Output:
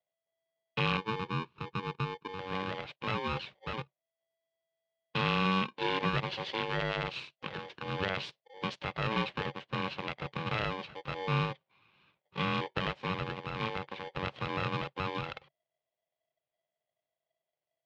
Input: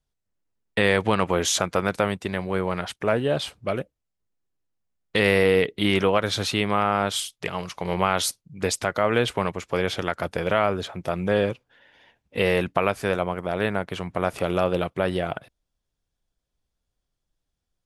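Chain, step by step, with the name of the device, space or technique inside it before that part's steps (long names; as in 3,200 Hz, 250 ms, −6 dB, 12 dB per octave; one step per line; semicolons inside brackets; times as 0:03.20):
0:00.97–0:02.39: Chebyshev band-pass filter 200–530 Hz, order 2
ring modulator pedal into a guitar cabinet (ring modulator with a square carrier 660 Hz; loudspeaker in its box 100–3,500 Hz, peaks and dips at 140 Hz +6 dB, 260 Hz −8 dB, 740 Hz −6 dB, 1,300 Hz −7 dB, 1,900 Hz −5 dB)
level −7.5 dB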